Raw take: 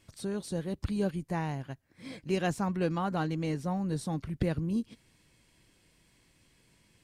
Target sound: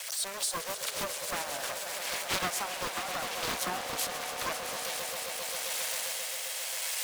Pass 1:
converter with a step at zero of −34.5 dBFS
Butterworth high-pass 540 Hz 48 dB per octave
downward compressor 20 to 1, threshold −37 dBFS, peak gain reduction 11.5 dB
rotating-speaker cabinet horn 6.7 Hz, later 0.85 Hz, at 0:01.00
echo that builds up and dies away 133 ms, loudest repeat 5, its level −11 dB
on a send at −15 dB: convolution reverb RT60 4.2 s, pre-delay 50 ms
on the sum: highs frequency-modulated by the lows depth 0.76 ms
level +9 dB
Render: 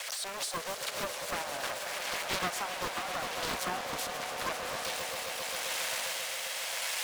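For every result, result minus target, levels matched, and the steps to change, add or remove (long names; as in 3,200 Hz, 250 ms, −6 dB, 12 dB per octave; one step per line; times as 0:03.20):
converter with a step at zero: distortion +5 dB; 8,000 Hz band −2.5 dB
change: converter with a step at zero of −40.5 dBFS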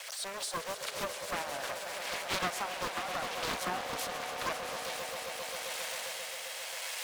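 8,000 Hz band −3.5 dB
add after downward compressor: high-shelf EQ 5,700 Hz +11 dB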